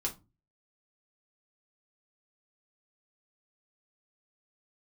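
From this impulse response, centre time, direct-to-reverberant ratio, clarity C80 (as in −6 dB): 13 ms, −1.0 dB, 23.5 dB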